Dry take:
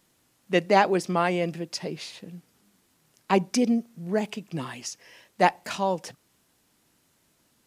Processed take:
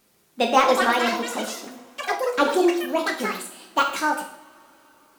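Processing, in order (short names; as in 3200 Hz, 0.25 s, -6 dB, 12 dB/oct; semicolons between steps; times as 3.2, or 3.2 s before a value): speed glide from 131% -> 165%; de-esser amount 60%; in parallel at -11.5 dB: soft clip -16.5 dBFS, distortion -13 dB; on the sum: two-slope reverb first 0.58 s, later 4.6 s, from -28 dB, DRR 1.5 dB; echoes that change speed 0.397 s, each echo +6 st, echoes 3, each echo -6 dB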